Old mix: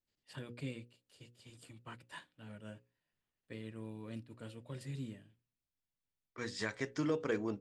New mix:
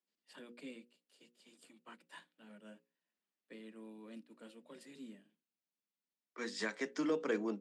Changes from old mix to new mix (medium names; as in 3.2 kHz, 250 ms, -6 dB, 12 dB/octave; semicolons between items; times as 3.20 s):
first voice -4.5 dB; master: add steep high-pass 170 Hz 96 dB/octave